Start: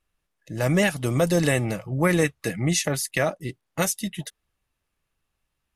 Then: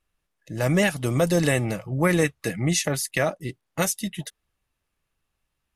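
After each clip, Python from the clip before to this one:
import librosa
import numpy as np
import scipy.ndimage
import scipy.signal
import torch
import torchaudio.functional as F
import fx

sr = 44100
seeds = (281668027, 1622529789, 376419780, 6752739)

y = x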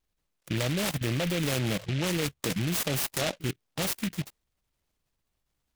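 y = fx.level_steps(x, sr, step_db=17)
y = fx.vibrato(y, sr, rate_hz=2.6, depth_cents=37.0)
y = fx.noise_mod_delay(y, sr, seeds[0], noise_hz=2400.0, depth_ms=0.19)
y = F.gain(torch.from_numpy(y), 6.0).numpy()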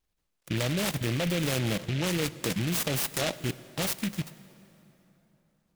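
y = fx.rev_plate(x, sr, seeds[1], rt60_s=3.5, hf_ratio=0.7, predelay_ms=0, drr_db=15.5)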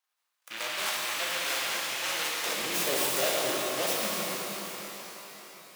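y = 10.0 ** (-24.0 / 20.0) * np.tanh(x / 10.0 ** (-24.0 / 20.0))
y = fx.filter_sweep_highpass(y, sr, from_hz=1000.0, to_hz=430.0, start_s=2.13, end_s=2.79, q=1.4)
y = fx.rev_shimmer(y, sr, seeds[2], rt60_s=3.9, semitones=12, shimmer_db=-8, drr_db=-4.5)
y = F.gain(torch.from_numpy(y), -1.0).numpy()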